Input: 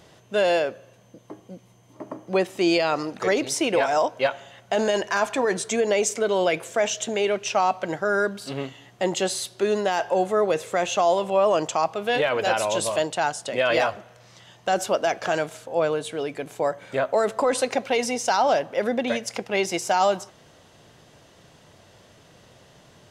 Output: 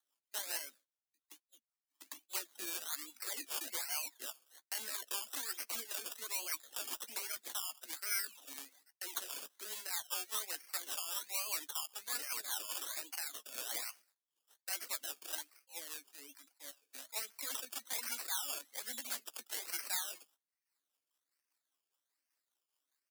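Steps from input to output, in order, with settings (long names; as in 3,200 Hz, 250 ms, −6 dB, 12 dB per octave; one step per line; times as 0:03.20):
flat-topped bell 520 Hz −11.5 dB 1.1 octaves
0:15.29–0:17.41: harmonic and percussive parts rebalanced percussive −14 dB
sample-and-hold swept by an LFO 17×, swing 60% 1.2 Hz
first difference
noise gate −58 dBFS, range −19 dB
brickwall limiter −17.5 dBFS, peak gain reduction 8.5 dB
Butterworth high-pass 230 Hz 96 dB per octave
reverb reduction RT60 0.63 s
rotating-speaker cabinet horn 5 Hz
double-tracking delay 14 ms −12.5 dB
level +2 dB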